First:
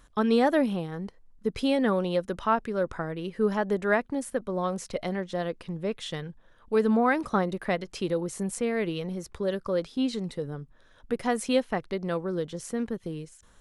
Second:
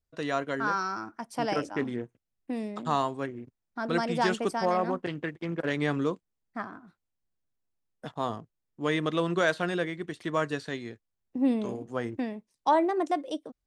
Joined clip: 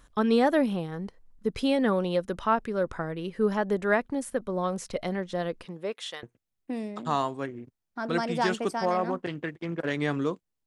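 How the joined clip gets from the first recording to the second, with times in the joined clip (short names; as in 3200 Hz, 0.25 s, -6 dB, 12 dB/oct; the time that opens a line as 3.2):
first
5.65–6.23 HPF 210 Hz -> 790 Hz
6.23 switch to second from 2.03 s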